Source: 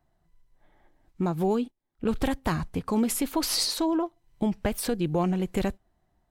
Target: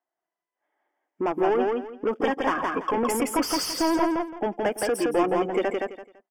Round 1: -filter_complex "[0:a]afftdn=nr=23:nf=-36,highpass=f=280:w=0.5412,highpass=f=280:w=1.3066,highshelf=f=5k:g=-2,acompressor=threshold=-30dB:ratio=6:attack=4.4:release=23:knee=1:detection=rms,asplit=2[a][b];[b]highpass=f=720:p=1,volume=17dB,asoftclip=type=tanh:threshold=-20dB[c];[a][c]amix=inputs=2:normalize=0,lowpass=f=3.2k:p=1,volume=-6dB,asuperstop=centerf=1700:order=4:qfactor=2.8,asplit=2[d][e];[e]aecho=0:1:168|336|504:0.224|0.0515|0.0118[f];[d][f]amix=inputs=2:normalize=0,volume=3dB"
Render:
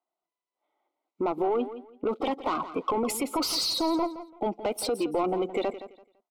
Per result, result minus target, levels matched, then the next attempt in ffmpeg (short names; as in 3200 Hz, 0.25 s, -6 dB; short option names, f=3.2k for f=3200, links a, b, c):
compressor: peak gain reduction +8.5 dB; 2000 Hz band -7.5 dB; echo-to-direct -10.5 dB
-filter_complex "[0:a]afftdn=nr=23:nf=-36,highpass=f=280:w=0.5412,highpass=f=280:w=1.3066,highshelf=f=5k:g=-2,asplit=2[a][b];[b]highpass=f=720:p=1,volume=17dB,asoftclip=type=tanh:threshold=-20dB[c];[a][c]amix=inputs=2:normalize=0,lowpass=f=3.2k:p=1,volume=-6dB,asuperstop=centerf=1700:order=4:qfactor=2.8,asplit=2[d][e];[e]aecho=0:1:168|336|504:0.224|0.0515|0.0118[f];[d][f]amix=inputs=2:normalize=0,volume=3dB"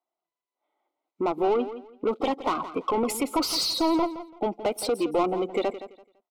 echo-to-direct -10.5 dB; 2000 Hz band -7.0 dB
-filter_complex "[0:a]afftdn=nr=23:nf=-36,highpass=f=280:w=0.5412,highpass=f=280:w=1.3066,highshelf=f=5k:g=-2,asplit=2[a][b];[b]highpass=f=720:p=1,volume=17dB,asoftclip=type=tanh:threshold=-20dB[c];[a][c]amix=inputs=2:normalize=0,lowpass=f=3.2k:p=1,volume=-6dB,asuperstop=centerf=1700:order=4:qfactor=2.8,asplit=2[d][e];[e]aecho=0:1:168|336|504:0.75|0.172|0.0397[f];[d][f]amix=inputs=2:normalize=0,volume=3dB"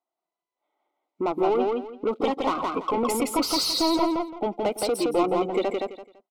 2000 Hz band -7.0 dB
-filter_complex "[0:a]afftdn=nr=23:nf=-36,highpass=f=280:w=0.5412,highpass=f=280:w=1.3066,highshelf=f=5k:g=-2,asplit=2[a][b];[b]highpass=f=720:p=1,volume=17dB,asoftclip=type=tanh:threshold=-20dB[c];[a][c]amix=inputs=2:normalize=0,lowpass=f=3.2k:p=1,volume=-6dB,asuperstop=centerf=4000:order=4:qfactor=2.8,asplit=2[d][e];[e]aecho=0:1:168|336|504:0.75|0.172|0.0397[f];[d][f]amix=inputs=2:normalize=0,volume=3dB"